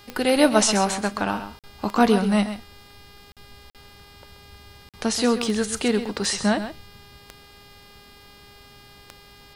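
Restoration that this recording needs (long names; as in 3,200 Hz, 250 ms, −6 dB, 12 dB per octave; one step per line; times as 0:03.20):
click removal
hum removal 406.3 Hz, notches 13
repair the gap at 0:01.59/0:03.32/0:03.70/0:04.89, 47 ms
echo removal 131 ms −11 dB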